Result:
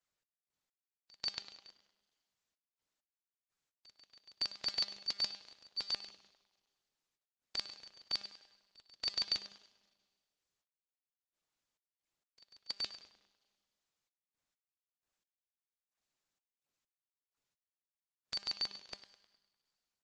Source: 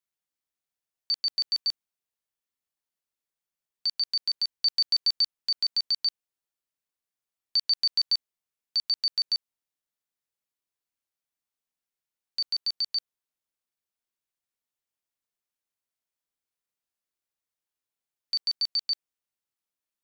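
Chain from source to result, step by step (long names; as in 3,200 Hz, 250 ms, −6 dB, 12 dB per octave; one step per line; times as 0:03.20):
compressing power law on the bin magnitudes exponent 0.52
low-pass filter 6,800 Hz 24 dB per octave
in parallel at −1 dB: brickwall limiter −18.5 dBFS, peak gain reduction 10.5 dB
on the sum: gate pattern "x.x..x...x" 65 BPM −24 dB
transient designer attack −6 dB, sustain +1 dB
tuned comb filter 200 Hz, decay 1.3 s, mix 70%
hard clipping −25 dBFS, distortion −24 dB
on a send: tape delay 101 ms, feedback 61%, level −8.5 dB, low-pass 3,200 Hz
on the sum: level +2 dB
Opus 12 kbit/s 48,000 Hz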